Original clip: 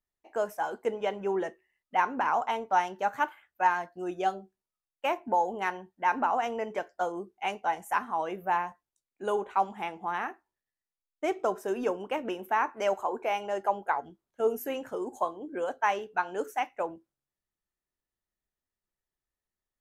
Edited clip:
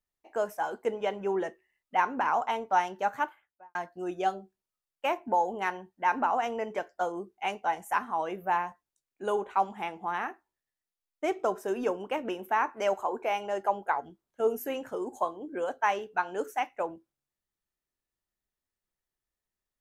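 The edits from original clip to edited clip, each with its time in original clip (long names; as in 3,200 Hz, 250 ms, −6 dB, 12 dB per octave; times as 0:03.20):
0:03.07–0:03.75: fade out and dull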